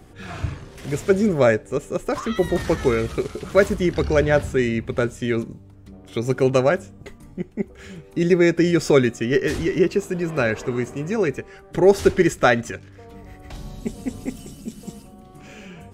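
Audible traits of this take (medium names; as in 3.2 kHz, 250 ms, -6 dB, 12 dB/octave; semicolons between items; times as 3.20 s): noise floor -46 dBFS; spectral tilt -6.0 dB/octave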